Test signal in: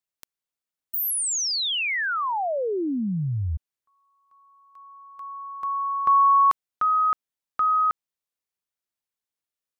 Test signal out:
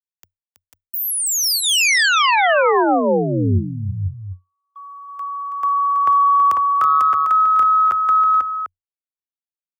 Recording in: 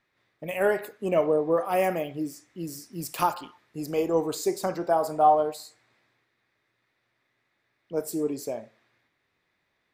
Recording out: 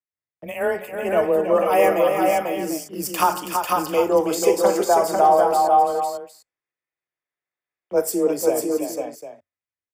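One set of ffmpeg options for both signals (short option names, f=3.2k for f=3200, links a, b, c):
-filter_complex "[0:a]bandreject=f=4k:w=5.6,agate=range=-30dB:threshold=-49dB:ratio=16:release=22:detection=rms,equalizer=f=72:t=o:w=0.6:g=14.5,acrossover=split=320[a][b];[b]dynaudnorm=f=270:g=11:m=11dB[c];[a][c]amix=inputs=2:normalize=0,aecho=1:1:326|495|499|749:0.422|0.596|0.335|0.224,afreqshift=19,acrossover=split=490|2500[d][e][f];[e]acompressor=threshold=-15dB:ratio=6:attack=6.1:release=33:knee=2.83:detection=peak[g];[d][g][f]amix=inputs=3:normalize=0"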